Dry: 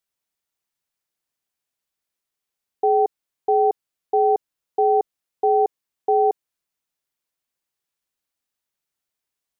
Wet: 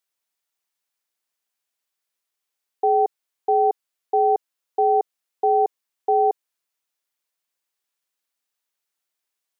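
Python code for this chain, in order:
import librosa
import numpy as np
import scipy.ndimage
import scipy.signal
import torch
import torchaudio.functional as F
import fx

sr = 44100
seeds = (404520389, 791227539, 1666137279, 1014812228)

y = fx.highpass(x, sr, hz=510.0, slope=6)
y = F.gain(torch.from_numpy(y), 2.0).numpy()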